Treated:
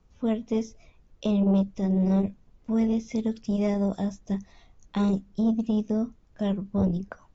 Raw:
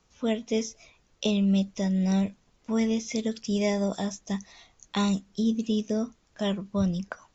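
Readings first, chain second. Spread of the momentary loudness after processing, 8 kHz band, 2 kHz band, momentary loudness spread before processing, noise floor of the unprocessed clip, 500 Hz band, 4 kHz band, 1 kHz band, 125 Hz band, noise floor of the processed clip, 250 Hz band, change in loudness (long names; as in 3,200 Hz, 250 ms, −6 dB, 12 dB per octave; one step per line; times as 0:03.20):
10 LU, can't be measured, −7.5 dB, 9 LU, −67 dBFS, 0.0 dB, −10.5 dB, −1.0 dB, +1.5 dB, −60 dBFS, +1.5 dB, +1.0 dB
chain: spectral tilt −3 dB per octave
saturating transformer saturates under 300 Hz
level −3.5 dB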